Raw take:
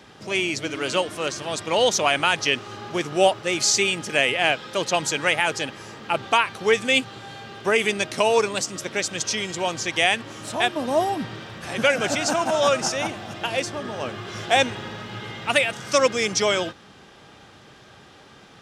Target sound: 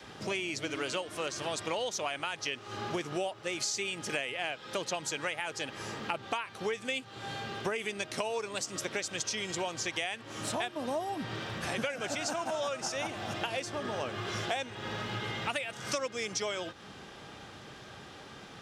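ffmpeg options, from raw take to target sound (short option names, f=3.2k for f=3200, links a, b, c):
-af "adynamicequalizer=threshold=0.00891:dfrequency=190:dqfactor=1.2:tfrequency=190:tqfactor=1.2:attack=5:release=100:ratio=0.375:range=2:mode=cutabove:tftype=bell,acompressor=threshold=-31dB:ratio=10"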